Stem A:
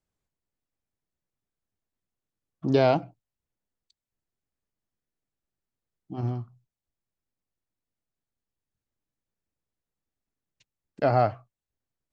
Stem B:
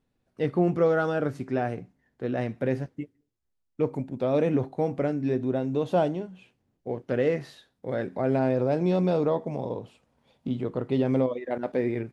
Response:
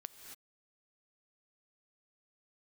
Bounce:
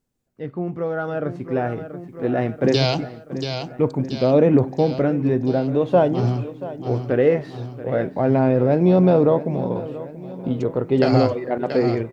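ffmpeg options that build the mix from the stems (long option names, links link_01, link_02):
-filter_complex "[0:a]highshelf=frequency=2900:gain=11,acrossover=split=140|3000[link_01][link_02][link_03];[link_02]acompressor=threshold=-29dB:ratio=6[link_04];[link_01][link_04][link_03]amix=inputs=3:normalize=0,volume=-4dB,asplit=3[link_05][link_06][link_07];[link_06]volume=-17.5dB[link_08];[link_07]volume=-6.5dB[link_09];[1:a]aemphasis=mode=reproduction:type=75fm,aphaser=in_gain=1:out_gain=1:delay=3:decay=0.21:speed=0.22:type=triangular,volume=-5.5dB,asplit=2[link_10][link_11];[link_11]volume=-15.5dB[link_12];[2:a]atrim=start_sample=2205[link_13];[link_08][link_13]afir=irnorm=-1:irlink=0[link_14];[link_09][link_12]amix=inputs=2:normalize=0,aecho=0:1:682|1364|2046|2728|3410|4092|4774|5456:1|0.56|0.314|0.176|0.0983|0.0551|0.0308|0.0173[link_15];[link_05][link_10][link_14][link_15]amix=inputs=4:normalize=0,dynaudnorm=framelen=130:gausssize=21:maxgain=12.5dB"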